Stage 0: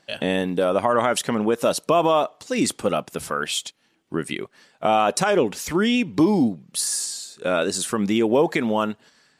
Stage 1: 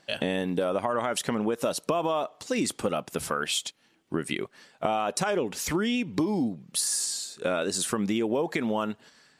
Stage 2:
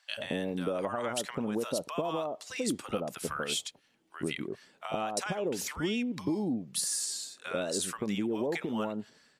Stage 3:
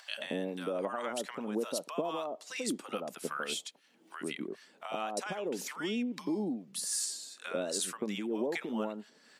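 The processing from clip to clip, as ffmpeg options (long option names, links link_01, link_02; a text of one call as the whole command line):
ffmpeg -i in.wav -af "acompressor=threshold=-24dB:ratio=5" out.wav
ffmpeg -i in.wav -filter_complex "[0:a]acrossover=split=900[link_01][link_02];[link_01]adelay=90[link_03];[link_03][link_02]amix=inputs=2:normalize=0,volume=-4.5dB" out.wav
ffmpeg -i in.wav -filter_complex "[0:a]highpass=frequency=190:width=0.5412,highpass=frequency=190:width=1.3066,acompressor=mode=upward:threshold=-39dB:ratio=2.5,acrossover=split=830[link_01][link_02];[link_01]aeval=exprs='val(0)*(1-0.5/2+0.5/2*cos(2*PI*2.5*n/s))':channel_layout=same[link_03];[link_02]aeval=exprs='val(0)*(1-0.5/2-0.5/2*cos(2*PI*2.5*n/s))':channel_layout=same[link_04];[link_03][link_04]amix=inputs=2:normalize=0" out.wav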